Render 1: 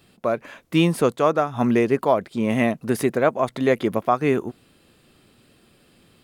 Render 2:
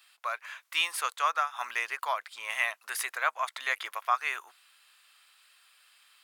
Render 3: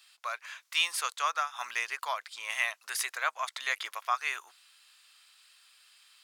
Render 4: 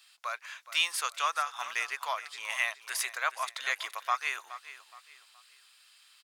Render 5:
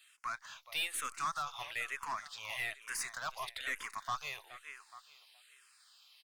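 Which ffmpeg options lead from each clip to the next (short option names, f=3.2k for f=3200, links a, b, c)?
-af "highpass=f=1.1k:w=0.5412,highpass=f=1.1k:w=1.3066"
-af "equalizer=f=5.6k:t=o:w=1.7:g=8.5,volume=-3.5dB"
-af "aecho=1:1:420|840|1260:0.188|0.064|0.0218"
-filter_complex "[0:a]aeval=exprs='(tanh(31.6*val(0)+0.25)-tanh(0.25))/31.6':c=same,asplit=2[a][b];[b]afreqshift=-1.1[c];[a][c]amix=inputs=2:normalize=1"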